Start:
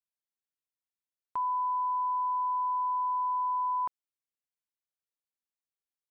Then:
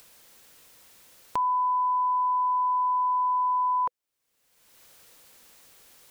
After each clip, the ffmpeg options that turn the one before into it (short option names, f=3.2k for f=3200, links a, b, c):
-af "equalizer=f=500:w=5.1:g=5.5,acompressor=mode=upward:threshold=-33dB:ratio=2.5,volume=5dB"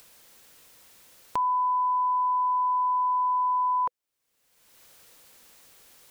-af anull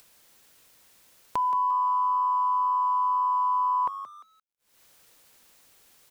-filter_complex "[0:a]asplit=4[a][b][c][d];[b]adelay=174,afreqshift=98,volume=-11.5dB[e];[c]adelay=348,afreqshift=196,volume=-21.1dB[f];[d]adelay=522,afreqshift=294,volume=-30.8dB[g];[a][e][f][g]amix=inputs=4:normalize=0,aeval=exprs='sgn(val(0))*max(abs(val(0))-0.00112,0)':c=same"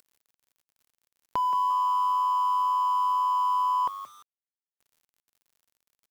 -filter_complex "[0:a]asplit=2[a][b];[b]adynamicsmooth=sensitivity=5:basefreq=630,volume=-1dB[c];[a][c]amix=inputs=2:normalize=0,acrusher=bits=7:mix=0:aa=0.000001,volume=-5.5dB"